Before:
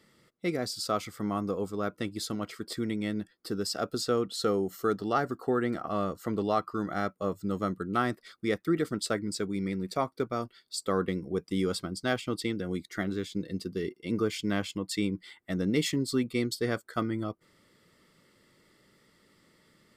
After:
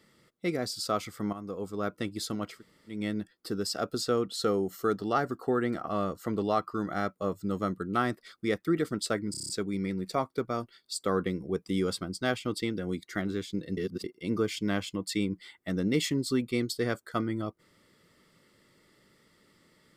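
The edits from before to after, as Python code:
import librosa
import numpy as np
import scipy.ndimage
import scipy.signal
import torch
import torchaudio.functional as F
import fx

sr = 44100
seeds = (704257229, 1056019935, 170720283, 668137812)

y = fx.edit(x, sr, fx.fade_in_from(start_s=1.33, length_s=0.52, floor_db=-12.5),
    fx.room_tone_fill(start_s=2.56, length_s=0.38, crossfade_s=0.16),
    fx.stutter(start_s=9.31, slice_s=0.03, count=7),
    fx.reverse_span(start_s=13.59, length_s=0.27), tone=tone)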